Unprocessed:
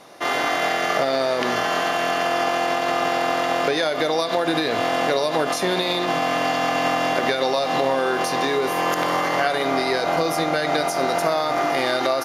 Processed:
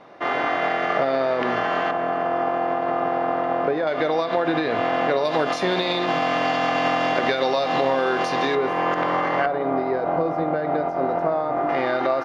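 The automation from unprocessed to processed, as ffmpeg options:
ffmpeg -i in.wav -af "asetnsamples=nb_out_samples=441:pad=0,asendcmd='1.91 lowpass f 1200;3.87 lowpass f 2400;5.25 lowpass f 4100;8.55 lowpass f 2200;9.46 lowpass f 1000;11.69 lowpass f 1900',lowpass=2200" out.wav

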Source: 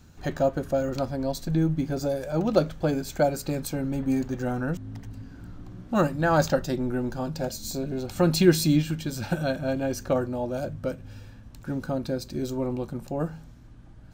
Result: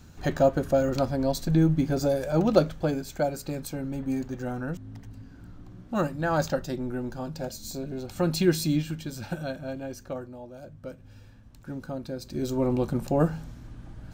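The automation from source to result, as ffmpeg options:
ffmpeg -i in.wav -af "volume=23dB,afade=type=out:start_time=2.4:duration=0.67:silence=0.473151,afade=type=out:start_time=8.92:duration=1.64:silence=0.298538,afade=type=in:start_time=10.56:duration=0.69:silence=0.375837,afade=type=in:start_time=12.16:duration=0.75:silence=0.251189" out.wav

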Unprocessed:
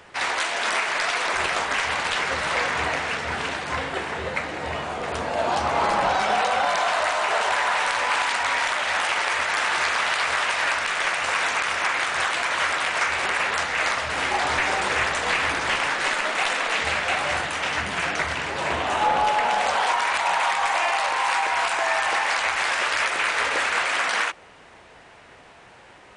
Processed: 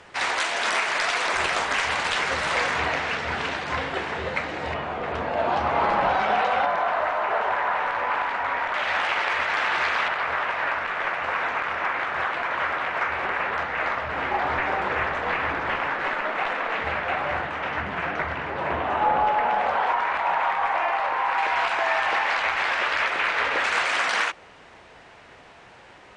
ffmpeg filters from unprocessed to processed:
ffmpeg -i in.wav -af "asetnsamples=nb_out_samples=441:pad=0,asendcmd='2.77 lowpass f 5300;4.74 lowpass f 2700;6.66 lowpass f 1600;8.74 lowpass f 3200;10.08 lowpass f 1800;21.38 lowpass f 3400;23.64 lowpass f 7100',lowpass=9100" out.wav

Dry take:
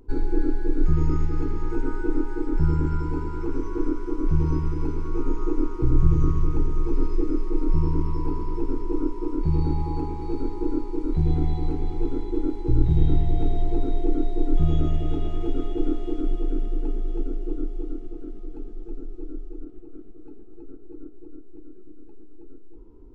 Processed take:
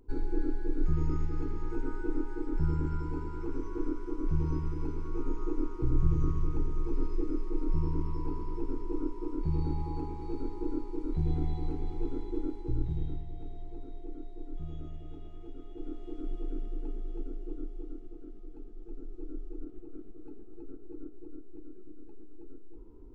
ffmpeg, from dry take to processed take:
ffmpeg -i in.wav -af "volume=8.5dB,afade=type=out:start_time=12.35:duration=0.91:silence=0.266073,afade=type=in:start_time=15.63:duration=0.81:silence=0.354813,afade=type=in:start_time=18.73:duration=1.04:silence=0.421697" out.wav

